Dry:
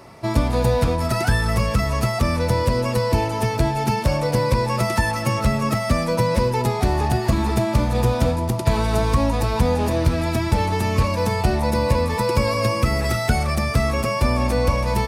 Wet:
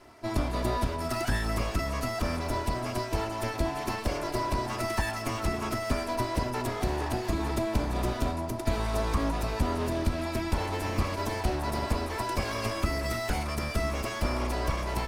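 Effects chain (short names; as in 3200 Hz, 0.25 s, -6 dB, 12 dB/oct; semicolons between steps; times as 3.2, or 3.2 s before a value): minimum comb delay 3 ms; gain -8 dB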